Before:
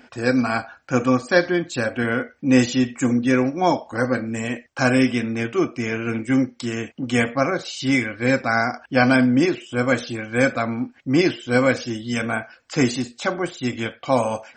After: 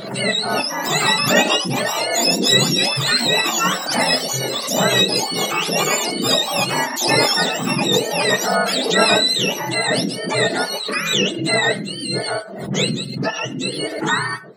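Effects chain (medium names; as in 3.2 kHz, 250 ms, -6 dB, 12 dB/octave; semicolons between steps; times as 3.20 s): spectrum inverted on a logarithmic axis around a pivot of 1 kHz; ever faster or slower copies 381 ms, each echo +5 st, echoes 2; swell ahead of each attack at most 56 dB/s; trim +3 dB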